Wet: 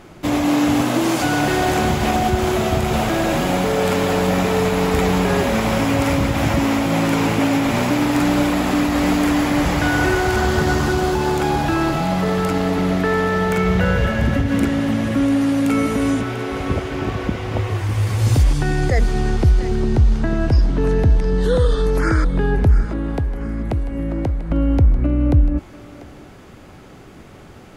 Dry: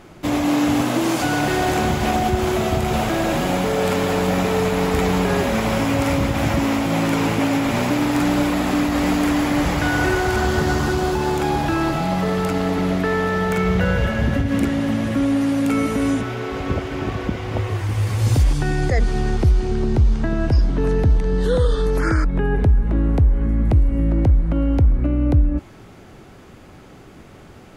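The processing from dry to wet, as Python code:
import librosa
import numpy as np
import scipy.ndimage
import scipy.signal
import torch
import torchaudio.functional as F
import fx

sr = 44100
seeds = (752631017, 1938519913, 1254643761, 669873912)

p1 = fx.low_shelf(x, sr, hz=210.0, db=-9.5, at=(22.85, 24.51))
p2 = p1 + fx.echo_thinned(p1, sr, ms=692, feedback_pct=37, hz=760.0, wet_db=-13, dry=0)
y = p2 * 10.0 ** (1.5 / 20.0)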